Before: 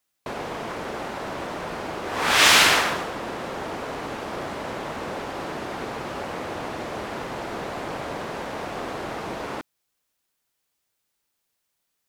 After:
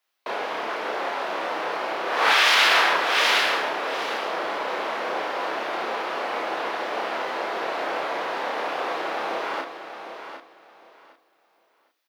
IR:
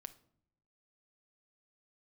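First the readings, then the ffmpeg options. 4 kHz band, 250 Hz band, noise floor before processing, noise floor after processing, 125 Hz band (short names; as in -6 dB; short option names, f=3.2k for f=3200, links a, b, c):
0.0 dB, -4.5 dB, -77 dBFS, -66 dBFS, under -15 dB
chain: -filter_complex "[0:a]highpass=f=150:w=0.5412,highpass=f=150:w=1.3066,lowshelf=f=230:g=-11,aeval=exprs='0.75*(cos(1*acos(clip(val(0)/0.75,-1,1)))-cos(1*PI/2))+0.00473*(cos(4*acos(clip(val(0)/0.75,-1,1)))-cos(4*PI/2))':c=same,aecho=1:1:757|1514|2271:0.335|0.0703|0.0148,aexciter=amount=3:drive=7.1:freq=10k,acrossover=split=330 5400:gain=0.2 1 0.0794[a][b][c];[a][b][c]amix=inputs=3:normalize=0,asplit=2[d][e];[1:a]atrim=start_sample=2205,adelay=30[f];[e][f]afir=irnorm=-1:irlink=0,volume=3.5dB[g];[d][g]amix=inputs=2:normalize=0,alimiter=level_in=11dB:limit=-1dB:release=50:level=0:latency=1,volume=-7.5dB"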